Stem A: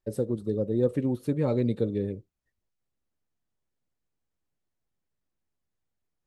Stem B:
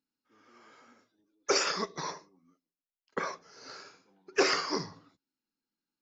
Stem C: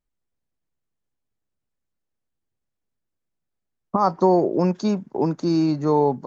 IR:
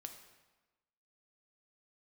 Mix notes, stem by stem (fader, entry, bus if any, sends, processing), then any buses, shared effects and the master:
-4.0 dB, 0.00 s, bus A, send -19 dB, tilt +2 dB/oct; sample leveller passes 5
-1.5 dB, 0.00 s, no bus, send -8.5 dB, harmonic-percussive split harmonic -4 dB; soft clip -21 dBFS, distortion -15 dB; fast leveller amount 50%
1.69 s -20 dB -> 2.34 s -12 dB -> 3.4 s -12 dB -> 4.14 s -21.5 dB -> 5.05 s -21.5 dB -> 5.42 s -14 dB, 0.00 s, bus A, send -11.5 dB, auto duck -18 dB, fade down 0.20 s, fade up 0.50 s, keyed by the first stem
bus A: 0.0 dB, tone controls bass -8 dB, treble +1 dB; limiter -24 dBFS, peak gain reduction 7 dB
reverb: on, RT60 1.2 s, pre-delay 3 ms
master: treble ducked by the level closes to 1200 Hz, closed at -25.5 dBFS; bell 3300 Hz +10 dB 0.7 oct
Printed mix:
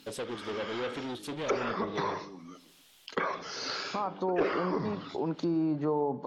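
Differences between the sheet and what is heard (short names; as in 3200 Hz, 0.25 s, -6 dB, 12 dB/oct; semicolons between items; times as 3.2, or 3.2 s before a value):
stem A -4.0 dB -> -15.5 dB; stem C -20.0 dB -> -9.0 dB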